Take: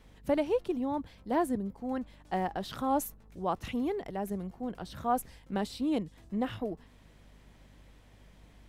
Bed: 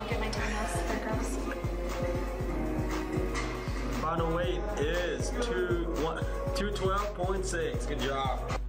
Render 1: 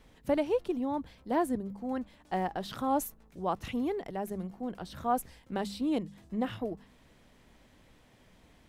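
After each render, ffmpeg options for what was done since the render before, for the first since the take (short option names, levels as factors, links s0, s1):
-af "bandreject=f=50:t=h:w=4,bandreject=f=100:t=h:w=4,bandreject=f=150:t=h:w=4,bandreject=f=200:t=h:w=4"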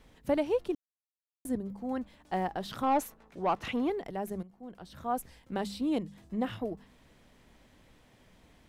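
-filter_complex "[0:a]asettb=1/sr,asplit=3[s0][s1][s2];[s0]atrim=end=2.834[s3];[s1]atrim=start=2.83:end=3.9,asetpts=PTS-STARTPTS,afade=t=in:d=0.004:c=qsin,afade=t=out:st=1.066:d=0.004:c=qsin,asplit=2[s4][s5];[s5]highpass=f=720:p=1,volume=5.62,asoftclip=type=tanh:threshold=0.126[s6];[s4][s6]amix=inputs=2:normalize=0,lowpass=f=2000:p=1,volume=0.501[s7];[s2]atrim=start=3.896[s8];[s3][s7]acrossfade=d=0.004:c1=hsin:c2=qsin[s9];[s9][s8]acrossfade=d=0.004:c1=qsin:c2=hsin,asplit=4[s10][s11][s12][s13];[s10]atrim=end=0.75,asetpts=PTS-STARTPTS,afade=t=out:st=0.746:d=0.004:c=hsin[s14];[s11]atrim=start=0.75:end=1.45,asetpts=PTS-STARTPTS,volume=0[s15];[s12]atrim=start=1.45:end=4.43,asetpts=PTS-STARTPTS,afade=t=in:d=0.004:c=hsin,afade=t=out:st=2.976:d=0.004:c=hsin:silence=0.177828[s16];[s13]atrim=start=4.43,asetpts=PTS-STARTPTS,afade=t=in:d=1.09:silence=0.177828[s17];[s14][s15][s16][s17]concat=n=4:v=0:a=1"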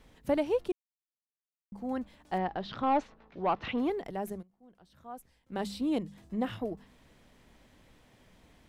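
-filter_complex "[0:a]asettb=1/sr,asplit=3[s0][s1][s2];[s0]atrim=end=2.384[s3];[s1]atrim=start=2.38:end=3.78,asetpts=PTS-STARTPTS,afade=t=in:d=0.004:c=qsin,afade=t=out:st=1.396:d=0.004:c=qsin,lowpass=f=4500:w=0.5412,lowpass=f=4500:w=1.3066[s4];[s2]atrim=start=3.776[s5];[s3][s4]acrossfade=d=0.004:c1=hsin:c2=qsin[s6];[s6][s5]acrossfade=d=0.004:c1=qsin:c2=hsin,asplit=5[s7][s8][s9][s10][s11];[s7]atrim=end=0.72,asetpts=PTS-STARTPTS,afade=t=out:st=0.716:d=0.004:c=hsin[s12];[s8]atrim=start=0.72:end=1.72,asetpts=PTS-STARTPTS,volume=0[s13];[s9]atrim=start=1.72:end=4.45,asetpts=PTS-STARTPTS,afade=t=in:d=0.004:c=hsin,afade=t=out:st=2.58:d=0.15:silence=0.237137[s14];[s10]atrim=start=4.45:end=5.46,asetpts=PTS-STARTPTS,volume=0.237[s15];[s11]atrim=start=5.46,asetpts=PTS-STARTPTS,afade=t=in:d=0.15:silence=0.237137[s16];[s12][s13][s14][s15][s16]concat=n=5:v=0:a=1"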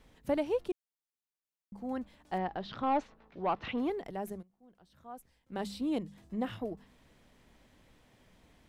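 -af "volume=0.75"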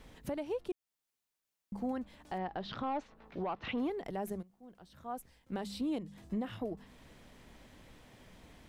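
-filter_complex "[0:a]asplit=2[s0][s1];[s1]acompressor=threshold=0.01:ratio=6,volume=1[s2];[s0][s2]amix=inputs=2:normalize=0,alimiter=level_in=1.68:limit=0.0631:level=0:latency=1:release=389,volume=0.596"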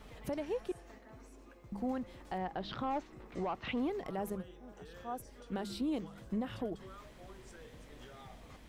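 -filter_complex "[1:a]volume=0.0708[s0];[0:a][s0]amix=inputs=2:normalize=0"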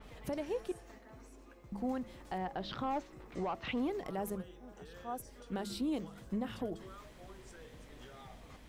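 -af "bandreject=f=111.1:t=h:w=4,bandreject=f=222.2:t=h:w=4,bandreject=f=333.3:t=h:w=4,bandreject=f=444.4:t=h:w=4,bandreject=f=555.5:t=h:w=4,bandreject=f=666.6:t=h:w=4,adynamicequalizer=threshold=0.00141:dfrequency=4900:dqfactor=0.7:tfrequency=4900:tqfactor=0.7:attack=5:release=100:ratio=0.375:range=2:mode=boostabove:tftype=highshelf"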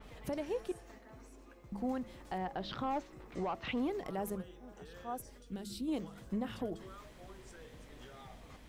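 -filter_complex "[0:a]asplit=3[s0][s1][s2];[s0]afade=t=out:st=5.37:d=0.02[s3];[s1]equalizer=f=1000:t=o:w=2.5:g=-14,afade=t=in:st=5.37:d=0.02,afade=t=out:st=5.87:d=0.02[s4];[s2]afade=t=in:st=5.87:d=0.02[s5];[s3][s4][s5]amix=inputs=3:normalize=0"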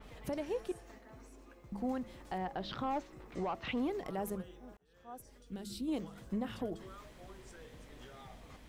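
-filter_complex "[0:a]asplit=2[s0][s1];[s0]atrim=end=4.77,asetpts=PTS-STARTPTS,afade=t=out:st=4.766:d=0.004:c=hsin[s2];[s1]atrim=start=4.77,asetpts=PTS-STARTPTS,afade=t=in:d=0.91[s3];[s2][s3]concat=n=2:v=0:a=1"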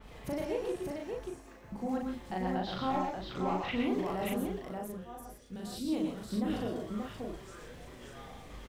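-filter_complex "[0:a]asplit=2[s0][s1];[s1]adelay=38,volume=0.794[s2];[s0][s2]amix=inputs=2:normalize=0,aecho=1:1:114|130|581:0.501|0.422|0.631"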